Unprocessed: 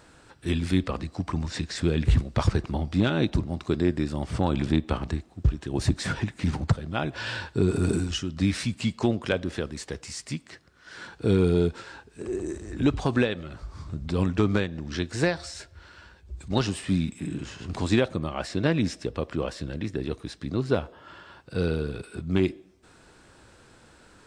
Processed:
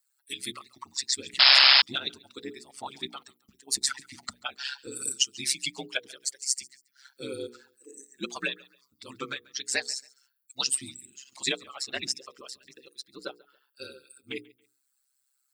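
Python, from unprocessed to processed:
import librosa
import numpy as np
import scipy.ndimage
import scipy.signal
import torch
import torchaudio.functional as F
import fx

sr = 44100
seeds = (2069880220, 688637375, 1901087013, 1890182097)

p1 = fx.bin_expand(x, sr, power=2.0)
p2 = scipy.signal.sosfilt(scipy.signal.butter(4, 180.0, 'highpass', fs=sr, output='sos'), p1)
p3 = p2 + fx.echo_feedback(p2, sr, ms=216, feedback_pct=30, wet_db=-23.5, dry=0)
p4 = fx.stretch_vocoder(p3, sr, factor=0.64)
p5 = fx.high_shelf(p4, sr, hz=2200.0, db=10.5)
p6 = fx.spec_paint(p5, sr, seeds[0], shape='noise', start_s=1.39, length_s=0.43, low_hz=600.0, high_hz=5300.0, level_db=-20.0)
p7 = p6 * np.sin(2.0 * np.pi * 67.0 * np.arange(len(p6)) / sr)
p8 = fx.tilt_eq(p7, sr, slope=4.0)
y = fx.hum_notches(p8, sr, base_hz=60, count=8)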